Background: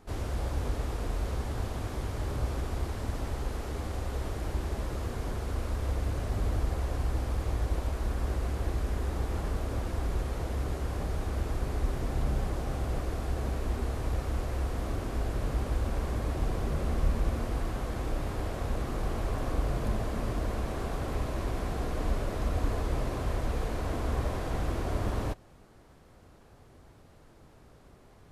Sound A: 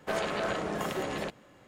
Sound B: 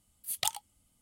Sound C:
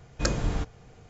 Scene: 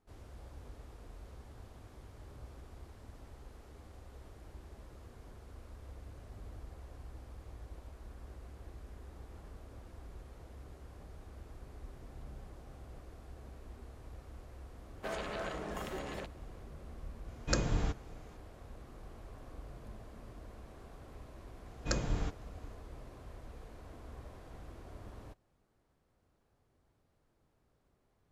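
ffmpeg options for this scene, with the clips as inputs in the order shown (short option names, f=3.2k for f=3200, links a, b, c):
-filter_complex "[3:a]asplit=2[a][b];[0:a]volume=-19dB[c];[1:a]atrim=end=1.67,asetpts=PTS-STARTPTS,volume=-8.5dB,afade=t=in:d=0.004:c=hsin,afade=t=out:st=1.666:d=0.004:c=hsin,adelay=14960[d];[a]atrim=end=1.09,asetpts=PTS-STARTPTS,volume=-4.5dB,afade=t=in:d=0.004:c=hsin,afade=t=out:st=1.086:d=0.004:c=hsin,adelay=17280[e];[b]atrim=end=1.09,asetpts=PTS-STARTPTS,volume=-7dB,afade=t=in:d=0.004:c=hsin,afade=t=out:st=1.086:d=0.004:c=hsin,adelay=21660[f];[c][d][e][f]amix=inputs=4:normalize=0"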